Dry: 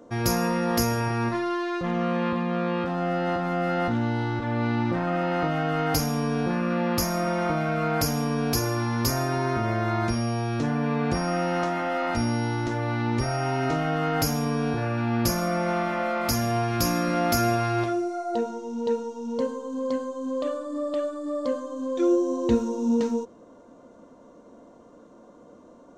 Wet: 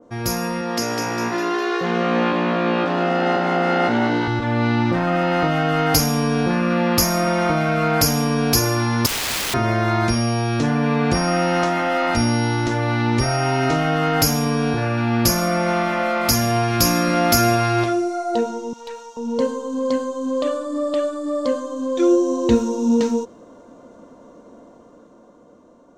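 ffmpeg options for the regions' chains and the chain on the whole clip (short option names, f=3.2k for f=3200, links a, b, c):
-filter_complex "[0:a]asettb=1/sr,asplit=3[a][b][c];[a]atrim=end=0.614[d];[b]atrim=start=0.61:end=4.28,asetpts=PTS-STARTPTS,afade=t=in:d=0.004:c=qsin,afade=t=out:st=3.666:d=0.004:c=qsin,highpass=180,lowpass=7.6k,asplit=6[e][f][g][h][i][j];[f]adelay=202,afreqshift=61,volume=-6dB[k];[g]adelay=404,afreqshift=122,volume=-12.9dB[l];[h]adelay=606,afreqshift=183,volume=-19.9dB[m];[i]adelay=808,afreqshift=244,volume=-26.8dB[n];[j]adelay=1010,afreqshift=305,volume=-33.7dB[o];[e][k][l][m][n][o]amix=inputs=6:normalize=0,atrim=end_sample=161847[p];[c]atrim=start=4.276[q];[d][p]acrossfade=d=0.004:c1=hsin:c2=qsin[r];[r][q]acrossfade=d=0.004:c1=qsin:c2=hsin,asettb=1/sr,asplit=3[s][t][u];[s]atrim=end=9.064[v];[t]atrim=start=9.06:end=9.54,asetpts=PTS-STARTPTS,afade=t=in:d=0.004:c=qsin,afade=t=out:st=0.476:d=0.004:c=qsin,lowpass=3.2k,aeval=exprs='(mod(25.1*val(0)+1,2)-1)/25.1':c=same[w];[u]atrim=start=9.536[x];[v][w]acrossfade=d=0.004:c1=hsin:c2=qsin[y];[y][x]acrossfade=d=0.004:c1=qsin:c2=hsin,asettb=1/sr,asplit=3[z][aa][ab];[z]atrim=end=18.734[ac];[aa]atrim=start=18.73:end=19.17,asetpts=PTS-STARTPTS,afade=t=in:d=0.004:c=qsin,afade=t=out:st=0.436:d=0.004:c=qsin,highpass=990,aeval=exprs='(tanh(44.7*val(0)+0.25)-tanh(0.25))/44.7':c=same[ad];[ab]atrim=start=19.166[ae];[ac][ad]acrossfade=d=0.004:c1=hsin:c2=qsin[af];[af][ae]acrossfade=d=0.004:c1=qsin:c2=hsin,dynaudnorm=f=210:g=13:m=6.5dB,adynamicequalizer=threshold=0.0224:dfrequency=1900:dqfactor=0.7:tfrequency=1900:tqfactor=0.7:attack=5:release=100:ratio=0.375:range=2:mode=boostabove:tftype=highshelf"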